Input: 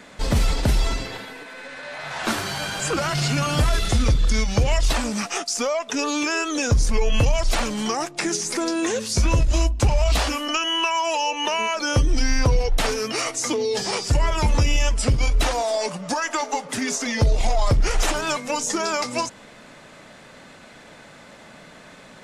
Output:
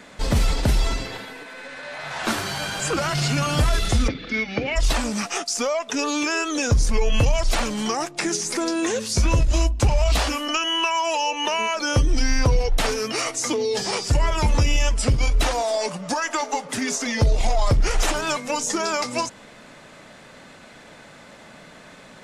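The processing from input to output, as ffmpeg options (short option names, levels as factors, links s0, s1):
-filter_complex "[0:a]asplit=3[s0][s1][s2];[s0]afade=t=out:st=4.07:d=0.02[s3];[s1]highpass=230,equalizer=f=270:t=q:w=4:g=8,equalizer=f=610:t=q:w=4:g=-3,equalizer=f=1000:t=q:w=4:g=-10,equalizer=f=2200:t=q:w=4:g=7,equalizer=f=3200:t=q:w=4:g=-3,lowpass=f=3900:w=0.5412,lowpass=f=3900:w=1.3066,afade=t=in:st=4.07:d=0.02,afade=t=out:st=4.75:d=0.02[s4];[s2]afade=t=in:st=4.75:d=0.02[s5];[s3][s4][s5]amix=inputs=3:normalize=0"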